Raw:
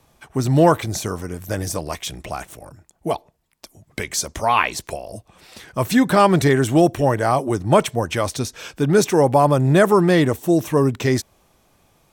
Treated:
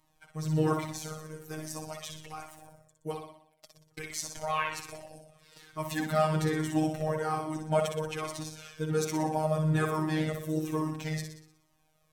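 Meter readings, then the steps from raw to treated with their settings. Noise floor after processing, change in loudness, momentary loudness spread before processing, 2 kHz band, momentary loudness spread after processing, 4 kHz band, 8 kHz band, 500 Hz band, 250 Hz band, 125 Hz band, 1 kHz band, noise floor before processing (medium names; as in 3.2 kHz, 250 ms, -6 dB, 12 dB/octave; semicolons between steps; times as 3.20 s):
-70 dBFS, -13.5 dB, 15 LU, -13.0 dB, 16 LU, -12.5 dB, -12.5 dB, -14.5 dB, -13.5 dB, -11.5 dB, -13.5 dB, -60 dBFS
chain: flutter echo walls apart 10.4 m, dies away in 0.67 s; robot voice 156 Hz; Shepard-style flanger falling 1.2 Hz; trim -7.5 dB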